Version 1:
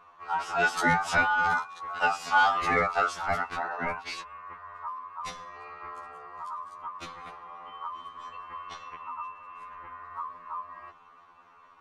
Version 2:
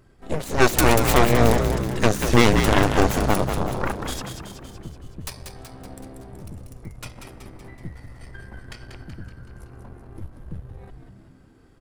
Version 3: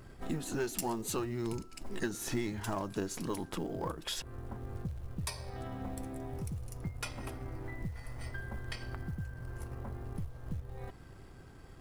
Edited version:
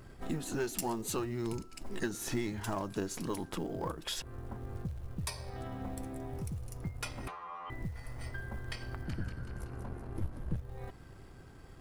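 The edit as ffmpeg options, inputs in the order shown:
-filter_complex "[2:a]asplit=3[s0][s1][s2];[s0]atrim=end=7.282[s3];[0:a]atrim=start=7.278:end=7.702[s4];[s1]atrim=start=7.698:end=9.052[s5];[1:a]atrim=start=9.048:end=10.562[s6];[s2]atrim=start=10.558[s7];[s3][s4]acrossfade=d=0.004:c1=hsin:c2=hsin[s8];[s8][s5]acrossfade=d=0.004:c1=hsin:c2=hsin[s9];[s9][s6]acrossfade=d=0.004:c1=hsin:c2=hsin[s10];[s10][s7]acrossfade=d=0.004:c1=hsin:c2=hsin"

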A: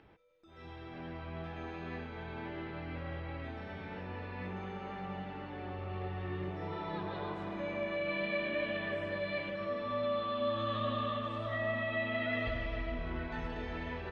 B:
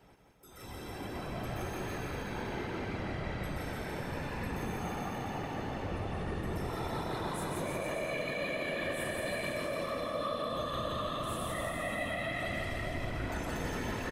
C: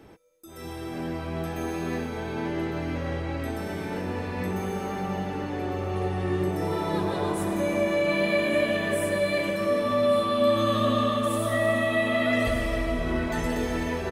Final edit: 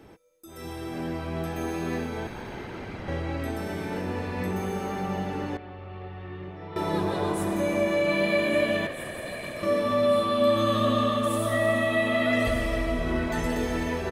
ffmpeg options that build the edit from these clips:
-filter_complex "[1:a]asplit=2[s0][s1];[2:a]asplit=4[s2][s3][s4][s5];[s2]atrim=end=2.272[s6];[s0]atrim=start=2.268:end=3.082[s7];[s3]atrim=start=3.078:end=5.572[s8];[0:a]atrim=start=5.568:end=6.762[s9];[s4]atrim=start=6.758:end=8.872[s10];[s1]atrim=start=8.868:end=9.632[s11];[s5]atrim=start=9.628[s12];[s6][s7]acrossfade=d=0.004:c1=hsin:c2=hsin[s13];[s13][s8]acrossfade=d=0.004:c1=hsin:c2=hsin[s14];[s14][s9]acrossfade=d=0.004:c1=hsin:c2=hsin[s15];[s15][s10]acrossfade=d=0.004:c1=hsin:c2=hsin[s16];[s16][s11]acrossfade=d=0.004:c1=hsin:c2=hsin[s17];[s17][s12]acrossfade=d=0.004:c1=hsin:c2=hsin"

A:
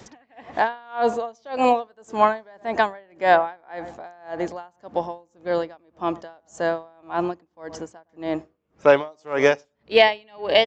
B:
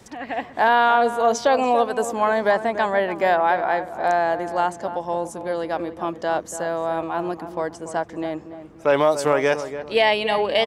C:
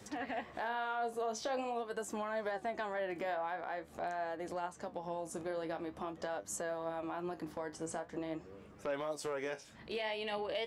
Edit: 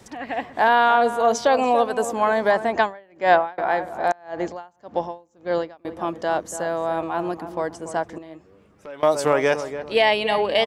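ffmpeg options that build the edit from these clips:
-filter_complex "[0:a]asplit=2[s0][s1];[1:a]asplit=4[s2][s3][s4][s5];[s2]atrim=end=2.722[s6];[s0]atrim=start=2.718:end=3.582[s7];[s3]atrim=start=3.578:end=4.122[s8];[s1]atrim=start=4.118:end=5.852[s9];[s4]atrim=start=5.848:end=8.182[s10];[2:a]atrim=start=8.178:end=9.032[s11];[s5]atrim=start=9.028[s12];[s6][s7]acrossfade=d=0.004:c1=hsin:c2=hsin[s13];[s13][s8]acrossfade=d=0.004:c1=hsin:c2=hsin[s14];[s14][s9]acrossfade=d=0.004:c1=hsin:c2=hsin[s15];[s15][s10]acrossfade=d=0.004:c1=hsin:c2=hsin[s16];[s16][s11]acrossfade=d=0.004:c1=hsin:c2=hsin[s17];[s17][s12]acrossfade=d=0.004:c1=hsin:c2=hsin"

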